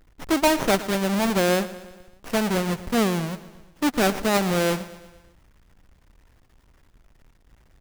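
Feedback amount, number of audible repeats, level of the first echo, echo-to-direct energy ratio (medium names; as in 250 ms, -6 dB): 56%, 4, -16.5 dB, -15.0 dB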